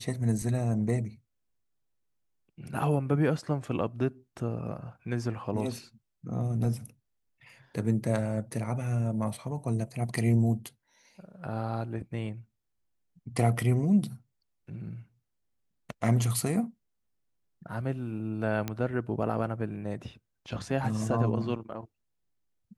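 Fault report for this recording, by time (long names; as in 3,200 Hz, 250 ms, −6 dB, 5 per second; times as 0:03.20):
0:18.68: click −17 dBFS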